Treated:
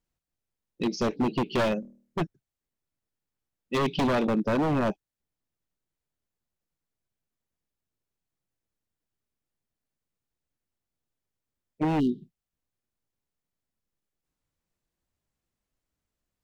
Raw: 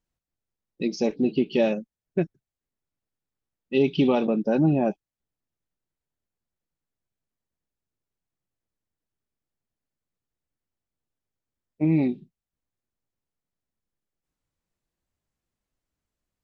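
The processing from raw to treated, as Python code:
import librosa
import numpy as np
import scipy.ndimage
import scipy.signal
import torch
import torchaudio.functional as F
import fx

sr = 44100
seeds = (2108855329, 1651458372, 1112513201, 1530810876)

y = 10.0 ** (-19.0 / 20.0) * (np.abs((x / 10.0 ** (-19.0 / 20.0) + 3.0) % 4.0 - 2.0) - 1.0)
y = fx.room_flutter(y, sr, wall_m=4.3, rt60_s=0.45, at=(1.8, 2.21))
y = fx.spec_erase(y, sr, start_s=12.0, length_s=0.22, low_hz=490.0, high_hz=2800.0)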